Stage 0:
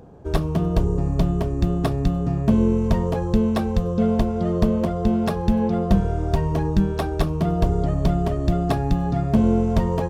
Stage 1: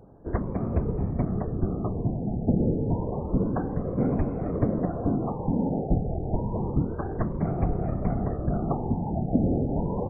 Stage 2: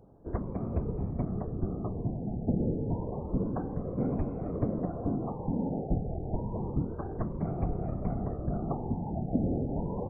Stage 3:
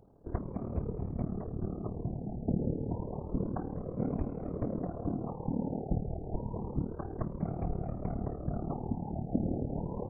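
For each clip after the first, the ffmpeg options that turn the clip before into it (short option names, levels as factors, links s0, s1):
-af "afftfilt=real='hypot(re,im)*cos(2*PI*random(0))':imag='hypot(re,im)*sin(2*PI*random(1))':win_size=512:overlap=0.75,adynamicsmooth=sensitivity=4.5:basefreq=2200,afftfilt=real='re*lt(b*sr/1024,870*pow(2600/870,0.5+0.5*sin(2*PI*0.29*pts/sr)))':imag='im*lt(b*sr/1024,870*pow(2600/870,0.5+0.5*sin(2*PI*0.29*pts/sr)))':win_size=1024:overlap=0.75"
-af "equalizer=f=1800:w=2.3:g=-7,volume=0.531"
-af "tremolo=f=37:d=0.71"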